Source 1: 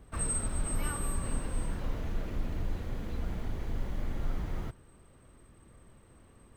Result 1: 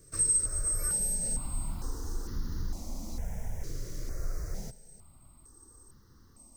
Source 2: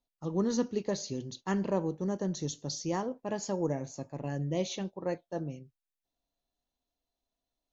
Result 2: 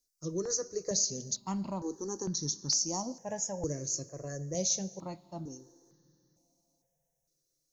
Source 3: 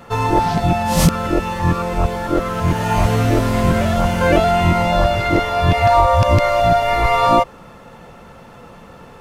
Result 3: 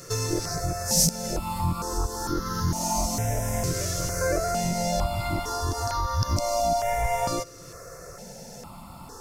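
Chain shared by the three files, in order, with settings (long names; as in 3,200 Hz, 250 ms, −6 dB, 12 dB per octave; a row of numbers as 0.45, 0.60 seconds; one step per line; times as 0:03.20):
high shelf with overshoot 4,200 Hz +10.5 dB, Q 3
downward compressor 2 to 1, threshold −27 dBFS
four-comb reverb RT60 3.5 s, combs from 26 ms, DRR 19.5 dB
step-sequenced phaser 2.2 Hz 220–2,400 Hz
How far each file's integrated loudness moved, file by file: +4.5, +0.5, −10.5 LU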